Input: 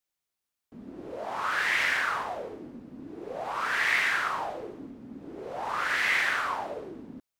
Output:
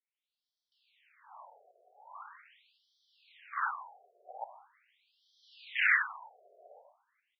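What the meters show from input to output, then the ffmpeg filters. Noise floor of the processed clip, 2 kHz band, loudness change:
under -85 dBFS, -7.5 dB, -4.0 dB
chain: -filter_complex "[0:a]acrossover=split=150|600|3100[s0][s1][s2][s3];[s1]alimiter=level_in=6.68:limit=0.0631:level=0:latency=1,volume=0.15[s4];[s0][s4][s2][s3]amix=inputs=4:normalize=0,highshelf=f=1700:t=q:w=1.5:g=6,acrossover=split=190|3000[s5][s6][s7];[s6]acompressor=threshold=0.0501:ratio=10[s8];[s5][s8][s7]amix=inputs=3:normalize=0,asoftclip=type=tanh:threshold=0.188,equalizer=f=4200:w=0.69:g=12.5,aecho=1:1:150|300|450:0.501|0.0852|0.0145,afwtdn=0.0794,afftfilt=real='re*between(b*sr/1024,510*pow(4400/510,0.5+0.5*sin(2*PI*0.42*pts/sr))/1.41,510*pow(4400/510,0.5+0.5*sin(2*PI*0.42*pts/sr))*1.41)':imag='im*between(b*sr/1024,510*pow(4400/510,0.5+0.5*sin(2*PI*0.42*pts/sr))/1.41,510*pow(4400/510,0.5+0.5*sin(2*PI*0.42*pts/sr))*1.41)':win_size=1024:overlap=0.75"

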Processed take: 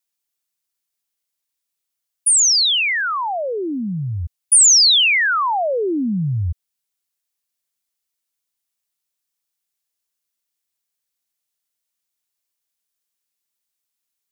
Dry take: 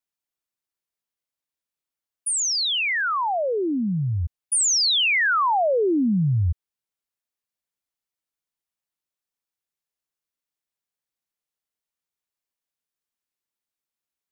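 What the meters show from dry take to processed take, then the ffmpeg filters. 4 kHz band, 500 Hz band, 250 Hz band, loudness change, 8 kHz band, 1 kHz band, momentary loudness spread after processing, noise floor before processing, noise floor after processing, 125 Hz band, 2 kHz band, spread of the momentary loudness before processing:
+7.5 dB, +0.5 dB, 0.0 dB, +6.5 dB, +10.0 dB, +1.5 dB, 16 LU, under -85 dBFS, -80 dBFS, 0.0 dB, +4.0 dB, 9 LU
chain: -af "highshelf=f=2700:g=11"

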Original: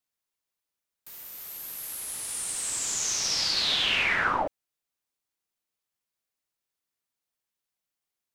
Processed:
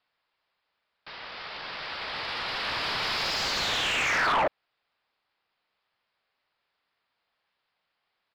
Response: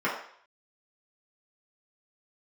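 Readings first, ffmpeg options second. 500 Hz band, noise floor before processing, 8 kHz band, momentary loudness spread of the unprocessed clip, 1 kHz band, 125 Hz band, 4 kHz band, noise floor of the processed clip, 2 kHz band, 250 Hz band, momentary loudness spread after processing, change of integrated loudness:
+4.5 dB, under -85 dBFS, -13.0 dB, 16 LU, +4.0 dB, +2.5 dB, -1.5 dB, -81 dBFS, +1.5 dB, +1.5 dB, 15 LU, -1.0 dB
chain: -filter_complex "[0:a]equalizer=f=310:t=o:w=1.3:g=-5.5,aresample=11025,aresample=44100,acrossover=split=2800[s0][s1];[s1]aeval=exprs='(mod(15.8*val(0)+1,2)-1)/15.8':c=same[s2];[s0][s2]amix=inputs=2:normalize=0,alimiter=limit=0.0841:level=0:latency=1:release=14,aresample=16000,aeval=exprs='0.0891*sin(PI/2*2.51*val(0)/0.0891)':c=same,aresample=44100,asplit=2[s3][s4];[s4]highpass=f=720:p=1,volume=4.47,asoftclip=type=tanh:threshold=0.168[s5];[s3][s5]amix=inputs=2:normalize=0,lowpass=f=1400:p=1,volume=0.501"

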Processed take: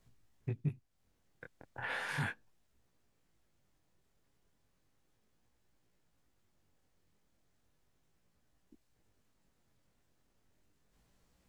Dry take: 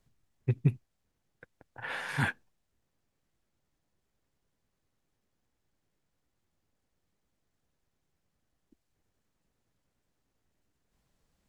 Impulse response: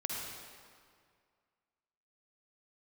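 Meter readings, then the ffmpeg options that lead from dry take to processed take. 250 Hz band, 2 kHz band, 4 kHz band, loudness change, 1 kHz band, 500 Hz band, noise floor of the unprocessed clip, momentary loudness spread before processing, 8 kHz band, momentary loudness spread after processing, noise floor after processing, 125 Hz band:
-8.0 dB, -4.0 dB, -3.5 dB, -6.5 dB, -4.0 dB, -5.5 dB, -81 dBFS, 17 LU, -3.5 dB, 20 LU, -76 dBFS, -8.5 dB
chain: -af "acompressor=threshold=0.00891:ratio=2.5,flanger=delay=16.5:depth=7.6:speed=0.35,volume=2"

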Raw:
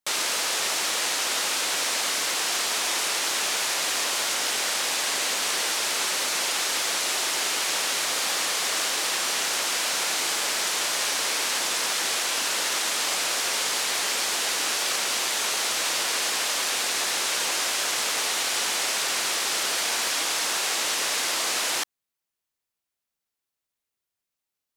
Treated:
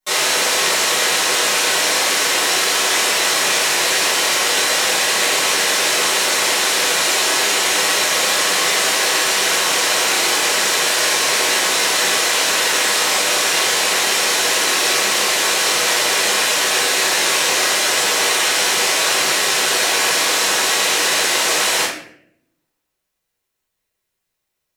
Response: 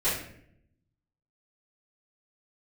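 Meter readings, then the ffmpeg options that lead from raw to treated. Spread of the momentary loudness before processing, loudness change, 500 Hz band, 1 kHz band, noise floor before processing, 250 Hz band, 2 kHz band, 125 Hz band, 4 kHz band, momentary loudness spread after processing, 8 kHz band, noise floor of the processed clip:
0 LU, +9.0 dB, +13.0 dB, +10.0 dB, under -85 dBFS, +11.5 dB, +11.0 dB, no reading, +9.0 dB, 0 LU, +8.0 dB, -77 dBFS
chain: -filter_complex "[1:a]atrim=start_sample=2205[s0];[0:a][s0]afir=irnorm=-1:irlink=0"

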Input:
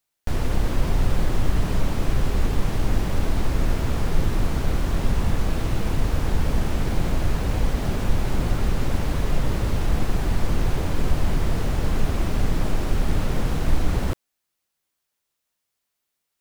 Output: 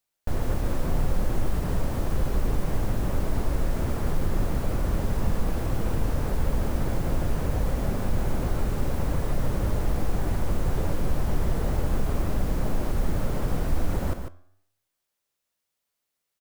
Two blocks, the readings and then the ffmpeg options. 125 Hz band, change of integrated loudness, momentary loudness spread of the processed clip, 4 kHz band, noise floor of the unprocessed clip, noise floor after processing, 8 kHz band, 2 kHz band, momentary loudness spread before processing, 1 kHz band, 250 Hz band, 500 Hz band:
-3.5 dB, -3.5 dB, 1 LU, -8.0 dB, -80 dBFS, -82 dBFS, -4.0 dB, -5.5 dB, 1 LU, -3.0 dB, -3.0 dB, -1.5 dB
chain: -filter_complex "[0:a]equalizer=f=550:t=o:w=0.43:g=3.5,acrossover=split=2000[s0][s1];[s0]alimiter=limit=0.224:level=0:latency=1[s2];[s1]aeval=exprs='(mod(89.1*val(0)+1,2)-1)/89.1':c=same[s3];[s2][s3]amix=inputs=2:normalize=0,flanger=delay=9.5:depth=9.7:regen=90:speed=0.2:shape=sinusoidal,aecho=1:1:148:0.398,volume=1.19"

